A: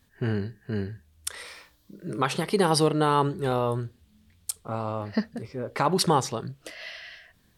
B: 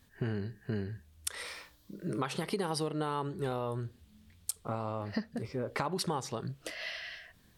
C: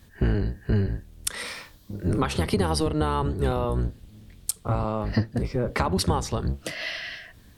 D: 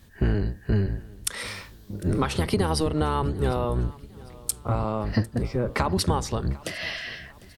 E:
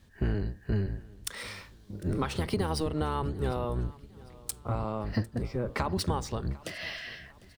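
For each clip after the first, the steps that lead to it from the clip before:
compressor 6:1, threshold -31 dBFS, peak gain reduction 13.5 dB
octaver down 1 oct, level +3 dB; gain +8 dB
feedback echo 0.751 s, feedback 43%, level -22 dB
median filter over 3 samples; gain -6 dB

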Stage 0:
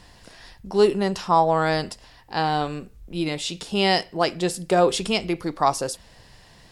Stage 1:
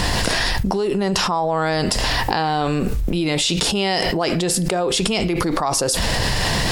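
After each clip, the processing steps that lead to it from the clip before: fast leveller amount 100%; gain -7 dB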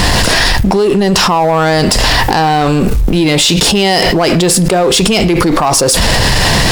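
sample leveller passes 3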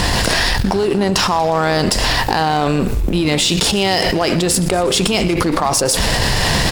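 frequency-shifting echo 0.119 s, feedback 65%, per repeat -97 Hz, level -18.5 dB; added harmonics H 3 -13 dB, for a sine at -1 dBFS; gain -1 dB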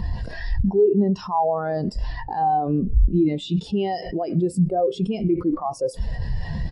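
spectral expander 2.5:1; gain -6 dB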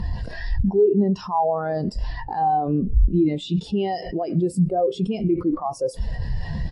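Vorbis 64 kbps 44100 Hz

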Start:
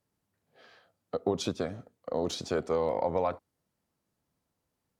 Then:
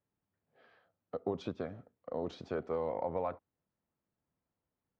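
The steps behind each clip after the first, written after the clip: LPF 2400 Hz 12 dB/oct; gain -6.5 dB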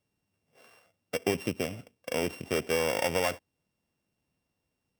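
sample sorter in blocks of 16 samples; gain +7 dB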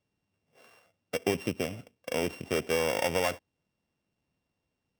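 median filter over 5 samples

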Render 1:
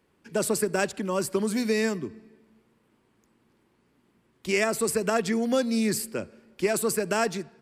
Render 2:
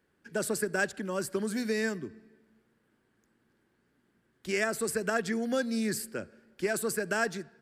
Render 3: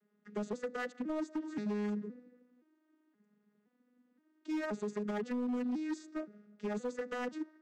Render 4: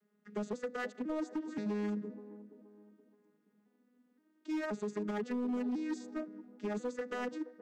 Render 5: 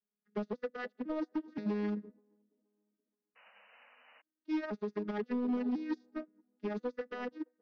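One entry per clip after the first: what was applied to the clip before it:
thirty-one-band EQ 1000 Hz -5 dB, 1600 Hz +9 dB, 2500 Hz -3 dB; gain -5.5 dB
arpeggiated vocoder minor triad, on G#3, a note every 0.522 s; compressor 3:1, threshold -32 dBFS, peak gain reduction 6.5 dB; overloaded stage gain 31.5 dB
band-limited delay 0.474 s, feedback 36%, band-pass 430 Hz, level -13.5 dB
painted sound noise, 3.35–4.22, 450–3000 Hz -46 dBFS; steep low-pass 5400 Hz 48 dB/oct; upward expander 2.5:1, over -50 dBFS; gain +3.5 dB

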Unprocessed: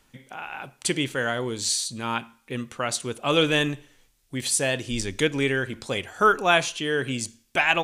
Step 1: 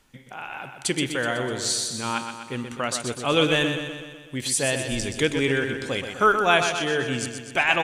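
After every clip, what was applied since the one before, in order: high shelf 12000 Hz -3 dB; on a send: feedback echo 0.125 s, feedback 59%, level -7.5 dB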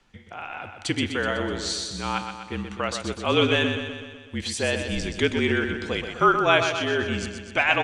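LPF 5200 Hz 12 dB/oct; frequency shift -39 Hz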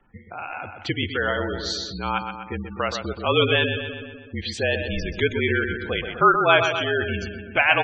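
low-pass opened by the level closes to 2300 Hz, open at -17.5 dBFS; spectral gate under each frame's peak -20 dB strong; dynamic EQ 250 Hz, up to -7 dB, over -39 dBFS, Q 1.7; gain +3 dB

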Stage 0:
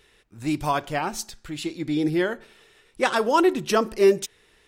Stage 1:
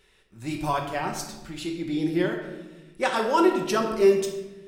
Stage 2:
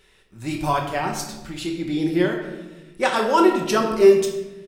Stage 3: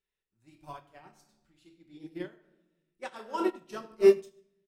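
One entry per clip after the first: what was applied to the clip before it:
reverb RT60 1.1 s, pre-delay 5 ms, DRR 2 dB; gain -4.5 dB
doubler 28 ms -12 dB; gain +4 dB
upward expander 2.5:1, over -27 dBFS; gain -5.5 dB

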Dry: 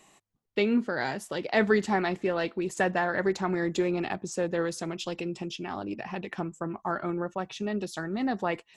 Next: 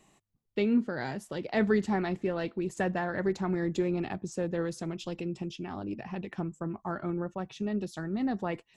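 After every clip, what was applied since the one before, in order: low shelf 290 Hz +11.5 dB; gain -7 dB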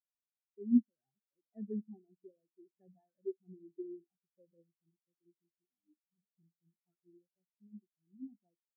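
on a send at -9.5 dB: reverb, pre-delay 3 ms; on the sum: spectral expander 4:1; gain -2.5 dB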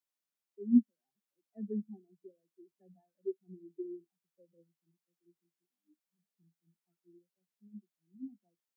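steep high-pass 150 Hz 96 dB/oct; gain +2.5 dB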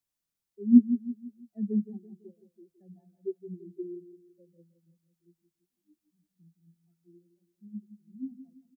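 tone controls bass +14 dB, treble +4 dB; feedback echo 0.167 s, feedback 41%, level -11.5 dB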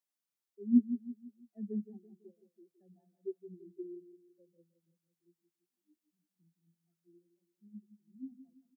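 HPF 240 Hz 12 dB/oct; gain -5 dB

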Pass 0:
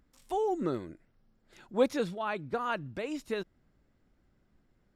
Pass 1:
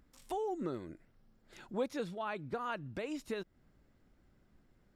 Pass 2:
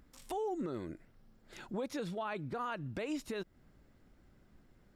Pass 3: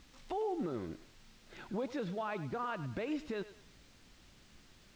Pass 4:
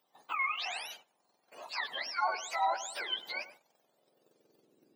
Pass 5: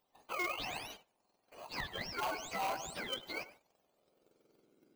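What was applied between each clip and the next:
compressor 2:1, threshold -42 dBFS, peak gain reduction 12 dB; gain +1.5 dB
limiter -34 dBFS, peak gain reduction 10 dB; gain +4 dB
added noise blue -52 dBFS; air absorption 160 m; thinning echo 0.103 s, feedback 42%, high-pass 430 Hz, level -13 dB; gain +1 dB
spectrum mirrored in octaves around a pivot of 970 Hz; gate -55 dBFS, range -14 dB; high-pass sweep 810 Hz -> 320 Hz, 3.59–4.95; gain +5 dB
in parallel at -4 dB: sample-rate reducer 1800 Hz, jitter 0%; on the sum: wavefolder -24.5 dBFS; gain -5 dB

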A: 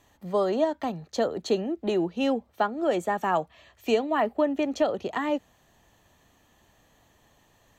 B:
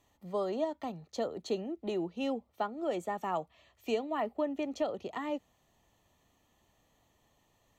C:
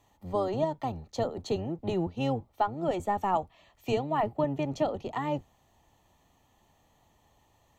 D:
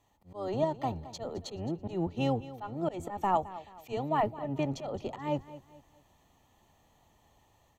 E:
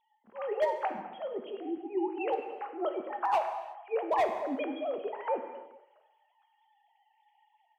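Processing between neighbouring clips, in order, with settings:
notch 1600 Hz, Q 5.1; gain -8.5 dB
octaver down 1 oct, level 0 dB; bell 850 Hz +6.5 dB 0.47 oct; gain +2.5 dB
auto swell 0.157 s; AGC gain up to 5 dB; feedback echo 0.216 s, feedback 36%, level -16 dB; gain -5 dB
sine-wave speech; overloaded stage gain 22.5 dB; non-linear reverb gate 0.39 s falling, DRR 5 dB

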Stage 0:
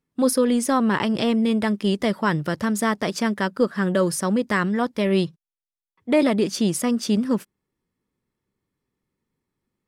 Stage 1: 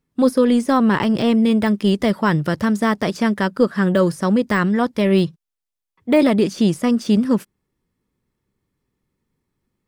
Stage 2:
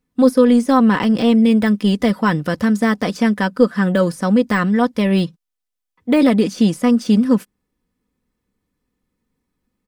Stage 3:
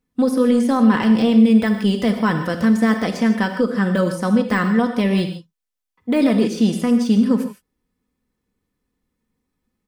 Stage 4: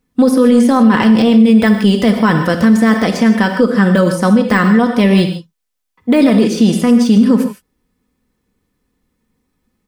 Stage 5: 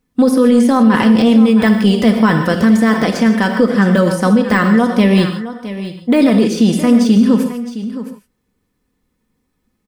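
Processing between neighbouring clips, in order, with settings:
de-esser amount 75%; low shelf 120 Hz +6.5 dB; gain +3.5 dB
comb 4 ms, depth 48%
limiter -7 dBFS, peak gain reduction 5.5 dB; non-linear reverb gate 0.18 s flat, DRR 6 dB; gain -2 dB
maximiser +9.5 dB; gain -1 dB
echo 0.665 s -13 dB; gain -1 dB

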